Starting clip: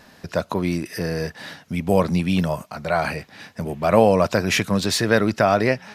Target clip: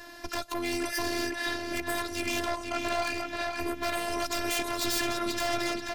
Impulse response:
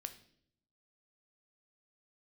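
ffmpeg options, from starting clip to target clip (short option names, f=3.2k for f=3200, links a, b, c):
-filter_complex "[0:a]asettb=1/sr,asplit=3[a][b][c];[a]atrim=end=2.264[d];[b]atrim=start=2.26:end=3.19,asetpts=PTS-STARTPTS,afade=t=in:d=0.004:c=qsin,afade=t=out:st=0.926:d=0.004:c=qsin,highpass=100,lowpass=6.2k[e];[c]atrim=start=3.186[f];[d][e]acrossfade=d=0.004:c1=hsin:c2=qsin[g];[g][f]acrossfade=d=0.004:c1=qsin:c2=hsin,acrossover=split=460|1300[h][i][j];[h]acompressor=threshold=-29dB:ratio=6[k];[j]alimiter=limit=-16.5dB:level=0:latency=1:release=153[l];[k][i][l]amix=inputs=3:normalize=0,acrossover=split=170|3000[m][n][o];[n]acompressor=threshold=-30dB:ratio=6[p];[m][p][o]amix=inputs=3:normalize=0,aeval=exprs='0.0398*(abs(mod(val(0)/0.0398+3,4)-2)-1)':c=same,asplit=2[q][r];[r]adelay=484,lowpass=f=3.6k:p=1,volume=-3.5dB,asplit=2[s][t];[t]adelay=484,lowpass=f=3.6k:p=1,volume=0.47,asplit=2[u][v];[v]adelay=484,lowpass=f=3.6k:p=1,volume=0.47,asplit=2[w][x];[x]adelay=484,lowpass=f=3.6k:p=1,volume=0.47,asplit=2[y][z];[z]adelay=484,lowpass=f=3.6k:p=1,volume=0.47,asplit=2[aa][ab];[ab]adelay=484,lowpass=f=3.6k:p=1,volume=0.47[ac];[q][s][u][w][y][aa][ac]amix=inputs=7:normalize=0,afftfilt=real='hypot(re,im)*cos(PI*b)':imag='0':win_size=512:overlap=0.75,volume=6.5dB"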